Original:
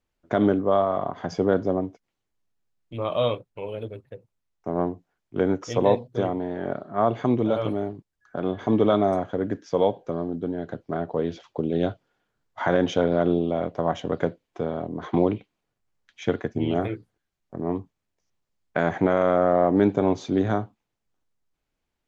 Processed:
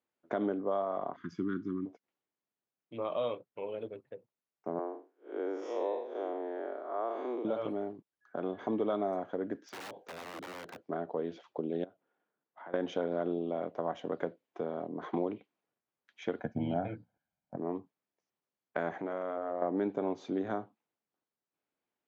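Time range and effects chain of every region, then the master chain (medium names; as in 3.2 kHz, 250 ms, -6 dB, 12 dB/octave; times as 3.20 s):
1.16–1.86 s: elliptic band-stop 340–1200 Hz, stop band 50 dB + bass shelf 240 Hz +8 dB + upward expansion, over -34 dBFS
4.79–7.45 s: spectral blur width 174 ms + steep high-pass 310 Hz
9.67–10.77 s: treble shelf 4.2 kHz +6 dB + compression 2.5:1, threshold -28 dBFS + integer overflow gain 31 dB
11.84–12.74 s: high-pass 150 Hz + distance through air 290 m + compression 2:1, threshold -52 dBFS
16.39–17.57 s: tilt EQ -2.5 dB/octave + comb 1.3 ms, depth 81%
18.94–19.62 s: hum notches 60/120/180/240/300/360/420/480/540 Hz + compression 2:1, threshold -31 dBFS
whole clip: high-pass 240 Hz 12 dB/octave; compression 2:1, threshold -28 dBFS; treble shelf 3.7 kHz -11.5 dB; trim -4.5 dB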